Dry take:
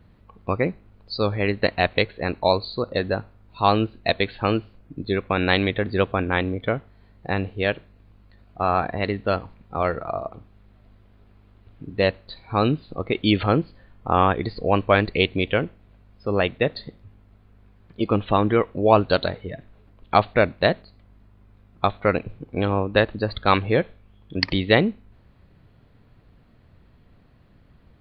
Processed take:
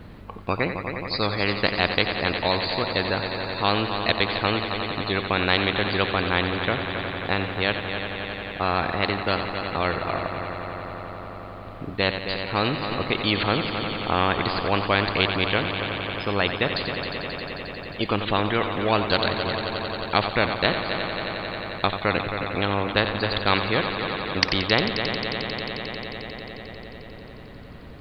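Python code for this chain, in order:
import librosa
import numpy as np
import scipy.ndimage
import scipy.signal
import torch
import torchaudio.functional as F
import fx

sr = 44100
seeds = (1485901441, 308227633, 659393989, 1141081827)

y = fx.echo_heads(x, sr, ms=89, heads='first and third', feedback_pct=75, wet_db=-15.5)
y = fx.spectral_comp(y, sr, ratio=2.0)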